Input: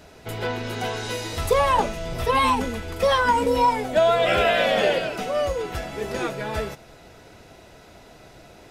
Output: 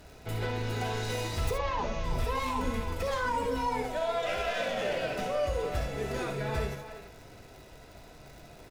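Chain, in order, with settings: tracing distortion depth 0.059 ms; crackle 160/s -38 dBFS; 1.51–2.04 elliptic low-pass 6400 Hz; 3.82–4.6 bell 130 Hz -8.5 dB 2.4 oct; limiter -19 dBFS, peak gain reduction 11.5 dB; low shelf 89 Hz +9.5 dB; notch 3200 Hz, Q 30; speakerphone echo 0.33 s, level -10 dB; non-linear reverb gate 90 ms rising, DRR 5 dB; gain -6.5 dB

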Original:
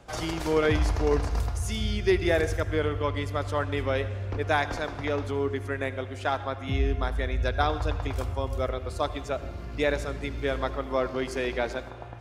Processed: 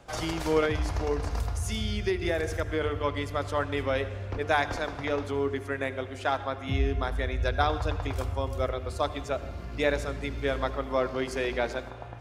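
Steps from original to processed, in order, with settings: notches 50/100/150/200/250/300/350/400/450 Hz; 0.64–2.81 compressor, threshold -24 dBFS, peak gain reduction 6.5 dB

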